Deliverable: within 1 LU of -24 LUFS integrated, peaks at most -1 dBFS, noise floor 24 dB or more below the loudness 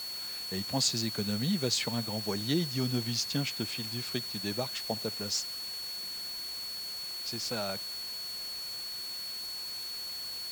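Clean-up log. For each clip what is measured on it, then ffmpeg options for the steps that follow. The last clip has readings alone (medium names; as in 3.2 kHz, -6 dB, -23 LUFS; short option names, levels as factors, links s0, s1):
steady tone 4.4 kHz; tone level -37 dBFS; noise floor -39 dBFS; noise floor target -57 dBFS; loudness -33.0 LUFS; peak level -15.5 dBFS; loudness target -24.0 LUFS
-> -af "bandreject=f=4400:w=30"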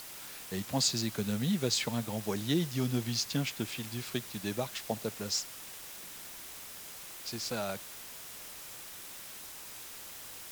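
steady tone not found; noise floor -47 dBFS; noise floor target -60 dBFS
-> -af "afftdn=nr=13:nf=-47"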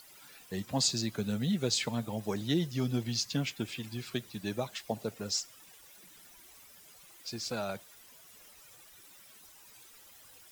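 noise floor -56 dBFS; noise floor target -58 dBFS
-> -af "afftdn=nr=6:nf=-56"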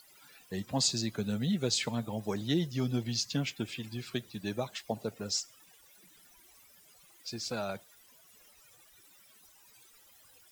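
noise floor -61 dBFS; loudness -34.0 LUFS; peak level -17.0 dBFS; loudness target -24.0 LUFS
-> -af "volume=3.16"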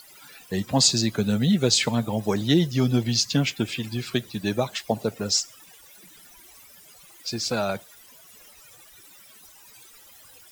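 loudness -24.0 LUFS; peak level -7.0 dBFS; noise floor -51 dBFS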